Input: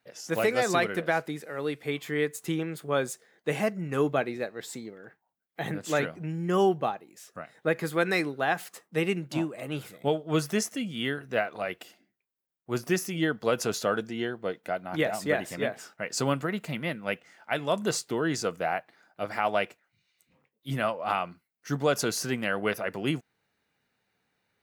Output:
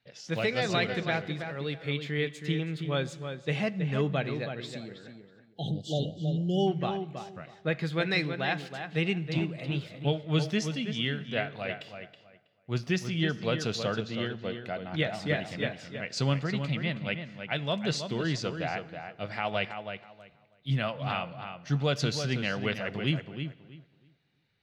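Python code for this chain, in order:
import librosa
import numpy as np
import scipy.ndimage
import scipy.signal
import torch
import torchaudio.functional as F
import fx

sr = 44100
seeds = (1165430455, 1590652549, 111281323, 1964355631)

y = fx.curve_eq(x, sr, hz=(140.0, 310.0, 3900.0, 12000.0), db=(0, -10, 0, -29))
y = fx.echo_filtered(y, sr, ms=323, feedback_pct=21, hz=3200.0, wet_db=-7.5)
y = fx.spec_erase(y, sr, start_s=5.53, length_s=1.14, low_hz=850.0, high_hz=2800.0)
y = fx.peak_eq(y, sr, hz=1200.0, db=-7.5, octaves=1.7)
y = fx.rev_plate(y, sr, seeds[0], rt60_s=1.5, hf_ratio=0.8, predelay_ms=0, drr_db=18.0)
y = y * 10.0 ** (5.5 / 20.0)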